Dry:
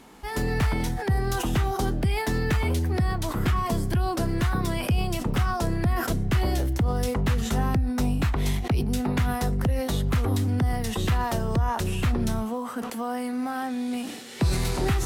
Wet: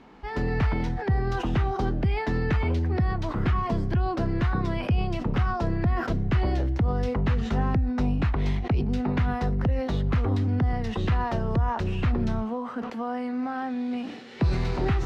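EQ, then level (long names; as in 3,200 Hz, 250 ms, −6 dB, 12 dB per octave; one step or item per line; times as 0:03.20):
high-frequency loss of the air 220 metres
parametric band 3,400 Hz −2.5 dB 0.22 octaves
0.0 dB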